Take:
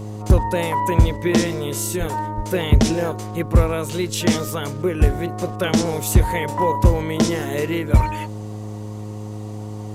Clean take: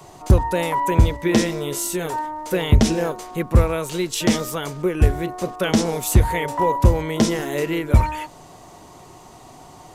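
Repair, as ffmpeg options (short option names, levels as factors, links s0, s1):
-filter_complex "[0:a]bandreject=f=105.7:t=h:w=4,bandreject=f=211.4:t=h:w=4,bandreject=f=317.1:t=h:w=4,bandreject=f=422.8:t=h:w=4,bandreject=f=528.5:t=h:w=4,asplit=3[s0][s1][s2];[s0]afade=t=out:st=1.99:d=0.02[s3];[s1]highpass=f=140:w=0.5412,highpass=f=140:w=1.3066,afade=t=in:st=1.99:d=0.02,afade=t=out:st=2.11:d=0.02[s4];[s2]afade=t=in:st=2.11:d=0.02[s5];[s3][s4][s5]amix=inputs=3:normalize=0,asplit=3[s6][s7][s8];[s6]afade=t=out:st=2.36:d=0.02[s9];[s7]highpass=f=140:w=0.5412,highpass=f=140:w=1.3066,afade=t=in:st=2.36:d=0.02,afade=t=out:st=2.48:d=0.02[s10];[s8]afade=t=in:st=2.48:d=0.02[s11];[s9][s10][s11]amix=inputs=3:normalize=0"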